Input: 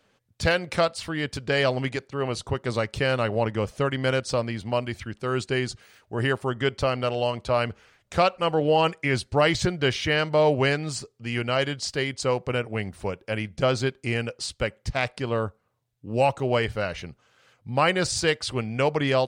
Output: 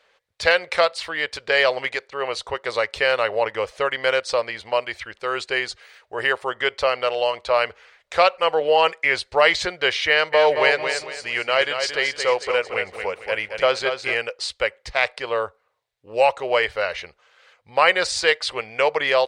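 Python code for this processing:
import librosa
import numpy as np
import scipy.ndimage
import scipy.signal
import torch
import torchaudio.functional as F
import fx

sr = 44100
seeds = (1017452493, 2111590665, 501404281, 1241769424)

y = fx.echo_feedback(x, sr, ms=224, feedback_pct=33, wet_db=-7, at=(10.32, 14.14), fade=0.02)
y = fx.graphic_eq(y, sr, hz=(125, 250, 500, 1000, 2000, 4000, 8000), db=(-12, -11, 11, 7, 11, 9, 3))
y = F.gain(torch.from_numpy(y), -5.5).numpy()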